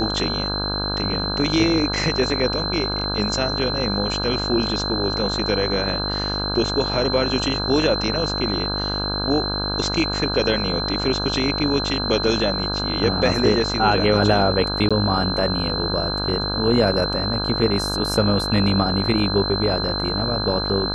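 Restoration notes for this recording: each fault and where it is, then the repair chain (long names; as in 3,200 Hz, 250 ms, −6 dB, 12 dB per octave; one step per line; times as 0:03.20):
mains buzz 50 Hz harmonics 33 −27 dBFS
whistle 4,100 Hz −25 dBFS
0:14.89–0:14.91: drop-out 16 ms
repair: hum removal 50 Hz, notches 33
notch filter 4,100 Hz, Q 30
repair the gap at 0:14.89, 16 ms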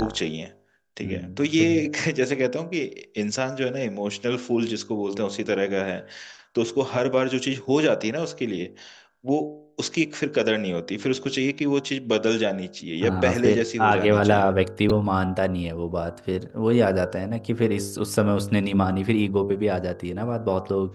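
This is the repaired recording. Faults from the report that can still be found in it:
none of them is left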